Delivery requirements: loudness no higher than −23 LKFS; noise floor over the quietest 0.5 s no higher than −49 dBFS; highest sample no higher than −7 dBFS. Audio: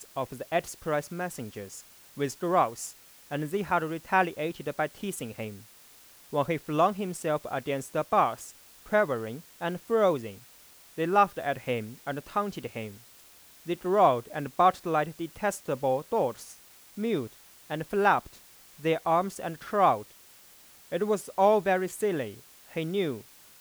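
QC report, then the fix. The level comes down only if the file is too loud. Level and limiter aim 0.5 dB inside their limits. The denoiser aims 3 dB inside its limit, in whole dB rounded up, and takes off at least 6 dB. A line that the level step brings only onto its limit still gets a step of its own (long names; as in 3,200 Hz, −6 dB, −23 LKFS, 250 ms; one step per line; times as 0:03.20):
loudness −29.0 LKFS: in spec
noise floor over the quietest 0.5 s −54 dBFS: in spec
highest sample −9.5 dBFS: in spec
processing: no processing needed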